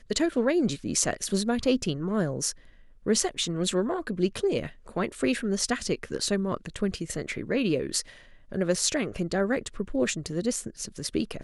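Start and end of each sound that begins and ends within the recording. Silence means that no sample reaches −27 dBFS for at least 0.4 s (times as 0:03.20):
0:03.07–0:08.01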